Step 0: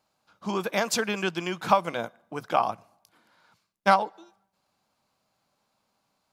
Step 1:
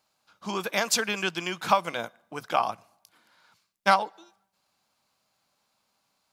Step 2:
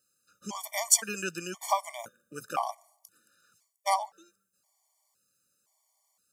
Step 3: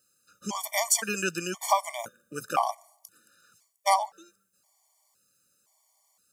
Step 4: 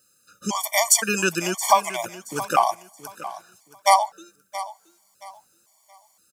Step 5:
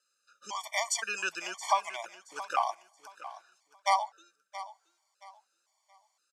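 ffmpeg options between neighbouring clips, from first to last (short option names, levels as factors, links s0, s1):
-af "tiltshelf=f=1200:g=-4"
-af "highshelf=f=5300:t=q:w=1.5:g=11.5,afftfilt=real='re*gt(sin(2*PI*0.97*pts/sr)*(1-2*mod(floor(b*sr/1024/600),2)),0)':imag='im*gt(sin(2*PI*0.97*pts/sr)*(1-2*mod(floor(b*sr/1024/600),2)),0)':win_size=1024:overlap=0.75,volume=0.631"
-af "alimiter=level_in=5.01:limit=0.891:release=50:level=0:latency=1,volume=0.355"
-af "aecho=1:1:674|1348|2022:0.178|0.0498|0.0139,volume=2.24"
-af "highpass=740,lowpass=5200,volume=0.398"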